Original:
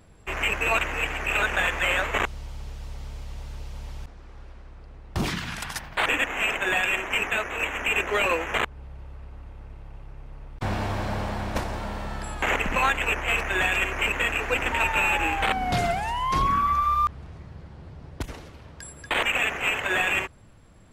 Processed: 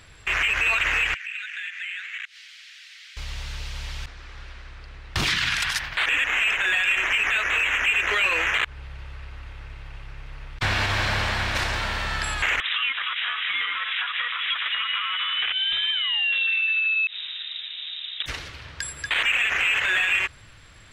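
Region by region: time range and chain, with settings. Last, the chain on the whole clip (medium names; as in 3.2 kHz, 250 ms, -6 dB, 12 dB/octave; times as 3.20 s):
1.14–3.17 s: steep high-pass 1.7 kHz + tilt EQ -3 dB/octave + compression 3:1, threshold -50 dBFS
12.60–18.26 s: high-pass 300 Hz 6 dB/octave + compression 8:1, threshold -36 dBFS + frequency inversion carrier 3.8 kHz
whole clip: FFT filter 130 Hz 0 dB, 190 Hz -8 dB, 320 Hz -4 dB, 800 Hz -2 dB, 1.7 kHz +11 dB, 3.9 kHz +13 dB, 12 kHz +2 dB; peak limiter -16 dBFS; trim +2.5 dB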